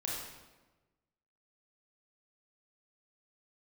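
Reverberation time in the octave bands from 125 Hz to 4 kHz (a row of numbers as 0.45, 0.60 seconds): 1.5, 1.3, 1.3, 1.1, 1.0, 0.85 seconds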